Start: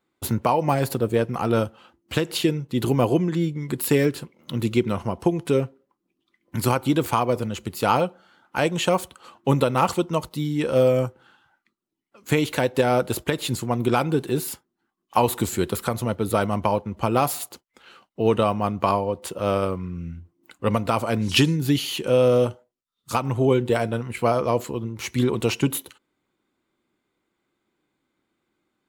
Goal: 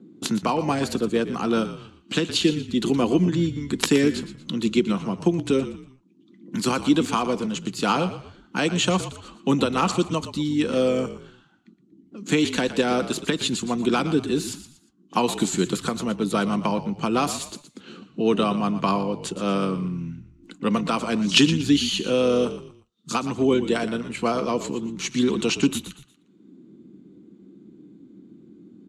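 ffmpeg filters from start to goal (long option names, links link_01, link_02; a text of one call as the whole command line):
ffmpeg -i in.wav -filter_complex "[0:a]aemphasis=mode=production:type=75fm,acrossover=split=380|710|2300[link_01][link_02][link_03][link_04];[link_01]acompressor=mode=upward:threshold=-26dB:ratio=2.5[link_05];[link_05][link_02][link_03][link_04]amix=inputs=4:normalize=0,aeval=exprs='(mod(1*val(0)+1,2)-1)/1':channel_layout=same,highpass=frequency=170:width=0.5412,highpass=frequency=170:width=1.3066,equalizer=frequency=190:width_type=q:width=4:gain=8,equalizer=frequency=290:width_type=q:width=4:gain=4,equalizer=frequency=580:width_type=q:width=4:gain=-7,equalizer=frequency=860:width_type=q:width=4:gain=-5,equalizer=frequency=2100:width_type=q:width=4:gain=-4,equalizer=frequency=5200:width_type=q:width=4:gain=-5,lowpass=frequency=6400:width=0.5412,lowpass=frequency=6400:width=1.3066,asplit=4[link_06][link_07][link_08][link_09];[link_07]adelay=118,afreqshift=-47,volume=-12.5dB[link_10];[link_08]adelay=236,afreqshift=-94,volume=-21.9dB[link_11];[link_09]adelay=354,afreqshift=-141,volume=-31.2dB[link_12];[link_06][link_10][link_11][link_12]amix=inputs=4:normalize=0" out.wav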